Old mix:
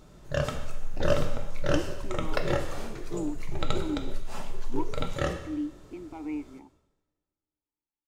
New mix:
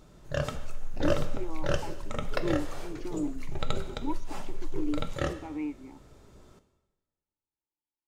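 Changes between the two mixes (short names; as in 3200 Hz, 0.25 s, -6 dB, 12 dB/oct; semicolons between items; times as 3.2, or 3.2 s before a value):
speech: entry -0.70 s; background: send -6.0 dB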